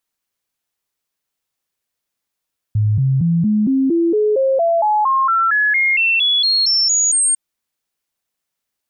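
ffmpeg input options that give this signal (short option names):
-f lavfi -i "aevalsrc='0.251*clip(min(mod(t,0.23),0.23-mod(t,0.23))/0.005,0,1)*sin(2*PI*106*pow(2,floor(t/0.23)/3)*mod(t,0.23))':d=4.6:s=44100"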